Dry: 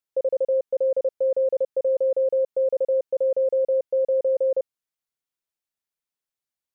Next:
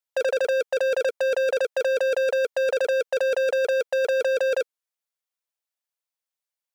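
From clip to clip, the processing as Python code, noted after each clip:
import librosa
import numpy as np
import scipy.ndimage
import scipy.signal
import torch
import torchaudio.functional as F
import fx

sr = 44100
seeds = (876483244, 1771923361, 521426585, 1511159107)

y = scipy.signal.sosfilt(scipy.signal.cheby1(5, 1.0, 470.0, 'highpass', fs=sr, output='sos'), x)
y = fx.over_compress(y, sr, threshold_db=-27.0, ratio=-0.5)
y = fx.leveller(y, sr, passes=5)
y = F.gain(torch.from_numpy(y), 1.5).numpy()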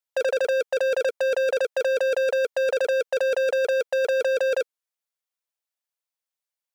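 y = x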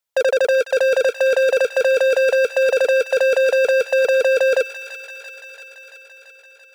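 y = fx.echo_wet_highpass(x, sr, ms=338, feedback_pct=72, hz=1500.0, wet_db=-8.5)
y = F.gain(torch.from_numpy(y), 6.5).numpy()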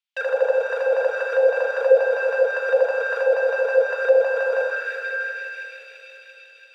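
y = fx.rev_plate(x, sr, seeds[0], rt60_s=4.5, hf_ratio=0.75, predelay_ms=0, drr_db=-3.5)
y = fx.mod_noise(y, sr, seeds[1], snr_db=27)
y = fx.auto_wah(y, sr, base_hz=540.0, top_hz=2900.0, q=2.3, full_db=-6.0, direction='down')
y = F.gain(torch.from_numpy(y), 1.0).numpy()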